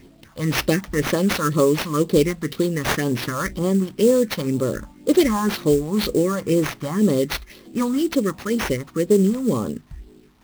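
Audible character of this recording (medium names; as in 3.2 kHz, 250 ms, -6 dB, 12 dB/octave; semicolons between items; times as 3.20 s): a quantiser's noise floor 10-bit, dither none; phasing stages 4, 2 Hz, lowest notch 380–2500 Hz; aliases and images of a low sample rate 8 kHz, jitter 20%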